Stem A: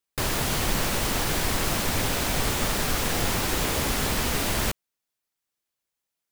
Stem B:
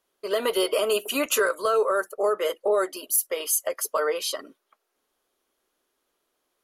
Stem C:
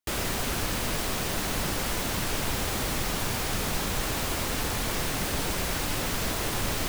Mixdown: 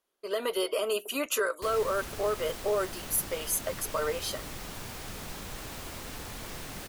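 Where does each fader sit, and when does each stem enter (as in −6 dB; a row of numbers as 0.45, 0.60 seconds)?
muted, −6.0 dB, −11.5 dB; muted, 0.00 s, 1.55 s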